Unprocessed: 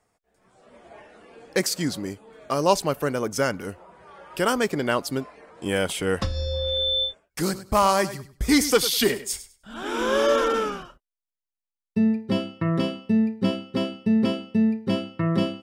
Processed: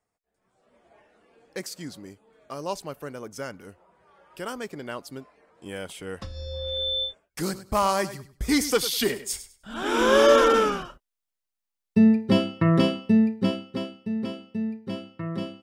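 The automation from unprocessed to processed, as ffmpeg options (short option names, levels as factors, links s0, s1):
-af "volume=1.58,afade=t=in:st=6.23:d=0.63:silence=0.398107,afade=t=in:st=9.15:d=0.82:silence=0.421697,afade=t=out:st=12.86:d=1.08:silence=0.237137"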